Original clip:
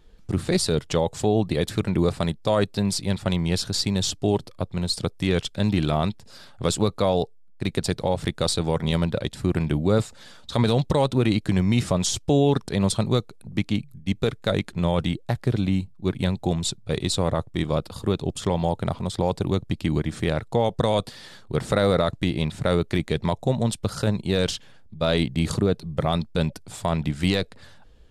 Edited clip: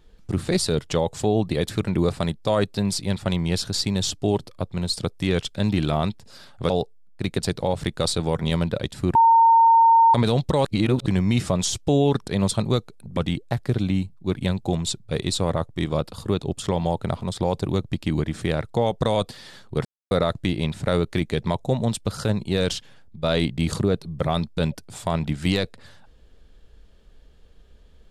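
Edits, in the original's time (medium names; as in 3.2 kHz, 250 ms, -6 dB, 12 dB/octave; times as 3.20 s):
6.70–7.11 s: delete
9.56–10.55 s: bleep 914 Hz -11 dBFS
11.06–11.47 s: reverse
13.58–14.95 s: delete
21.63–21.89 s: mute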